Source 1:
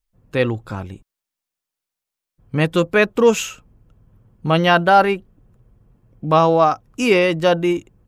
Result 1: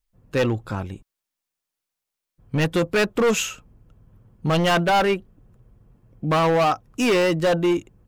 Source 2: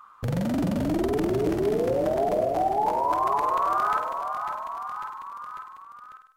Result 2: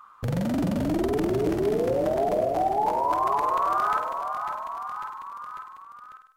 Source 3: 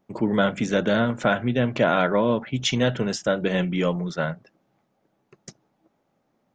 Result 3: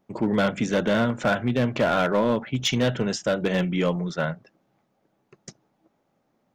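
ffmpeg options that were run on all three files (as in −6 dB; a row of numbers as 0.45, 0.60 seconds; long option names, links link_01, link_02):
-af "asoftclip=type=hard:threshold=-15.5dB"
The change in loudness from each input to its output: −4.5, 0.0, −1.0 LU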